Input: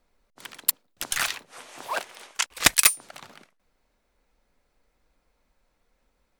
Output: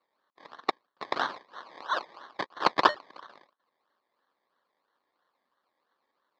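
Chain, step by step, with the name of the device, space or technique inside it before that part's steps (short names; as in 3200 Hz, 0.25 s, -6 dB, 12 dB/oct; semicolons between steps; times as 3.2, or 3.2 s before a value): circuit-bent sampling toy (decimation with a swept rate 25×, swing 60% 3 Hz; speaker cabinet 460–4400 Hz, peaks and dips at 460 Hz -3 dB, 680 Hz -3 dB, 1100 Hz +8 dB, 1700 Hz +7 dB, 2600 Hz -7 dB, 4300 Hz +8 dB); gain -2.5 dB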